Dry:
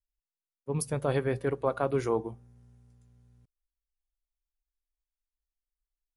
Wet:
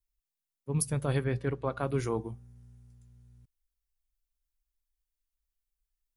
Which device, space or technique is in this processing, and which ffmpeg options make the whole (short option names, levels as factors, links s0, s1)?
smiley-face EQ: -filter_complex "[0:a]lowshelf=f=200:g=5.5,equalizer=f=580:t=o:w=2:g=-6.5,highshelf=f=8400:g=6,asettb=1/sr,asplit=3[s0][s1][s2];[s0]atrim=end=1.244[s3];[s1]atrim=start=1.24:end=1.79,asetpts=PTS-STARTPTS,afade=t=in:d=0.004:c=qsin,afade=t=out:st=0.546:d=0.004:c=qsin,lowpass=5500[s4];[s2]atrim=start=1.786[s5];[s3][s4]acrossfade=d=0.004:c1=hsin:c2=qsin[s6];[s6][s5]acrossfade=d=0.004:c1=qsin:c2=hsin"